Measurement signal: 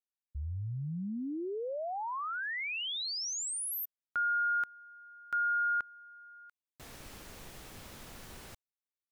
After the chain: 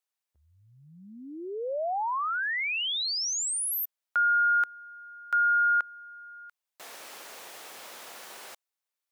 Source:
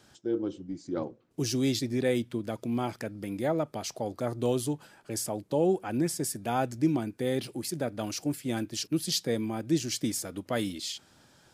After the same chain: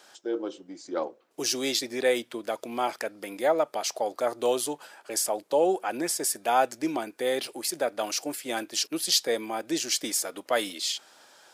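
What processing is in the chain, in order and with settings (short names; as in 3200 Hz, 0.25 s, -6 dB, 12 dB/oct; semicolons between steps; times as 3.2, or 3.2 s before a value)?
Chebyshev high-pass 610 Hz, order 2; gain +7.5 dB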